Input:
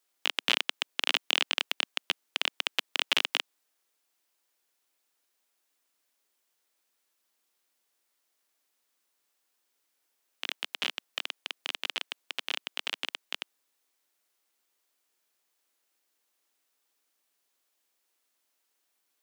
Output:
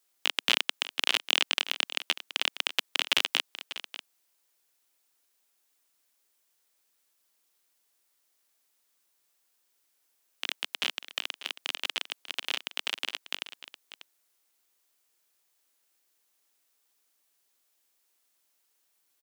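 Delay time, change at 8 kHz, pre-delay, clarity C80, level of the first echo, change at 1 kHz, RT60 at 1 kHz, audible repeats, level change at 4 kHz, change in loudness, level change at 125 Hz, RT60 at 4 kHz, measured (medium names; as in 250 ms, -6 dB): 593 ms, +3.5 dB, no reverb, no reverb, -14.0 dB, +0.5 dB, no reverb, 1, +1.5 dB, +1.5 dB, no reading, no reverb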